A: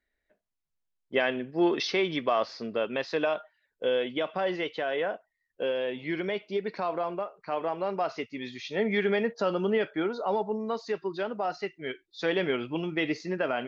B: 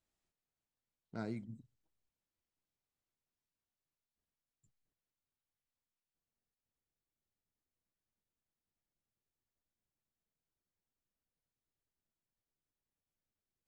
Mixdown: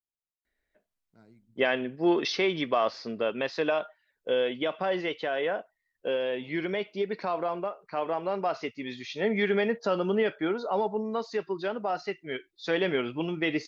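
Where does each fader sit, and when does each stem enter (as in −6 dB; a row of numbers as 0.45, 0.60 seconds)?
+0.5, −16.5 decibels; 0.45, 0.00 seconds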